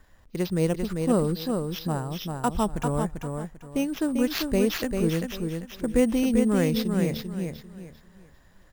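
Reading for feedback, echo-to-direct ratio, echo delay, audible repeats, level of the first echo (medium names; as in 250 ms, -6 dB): 27%, -4.5 dB, 394 ms, 3, -5.0 dB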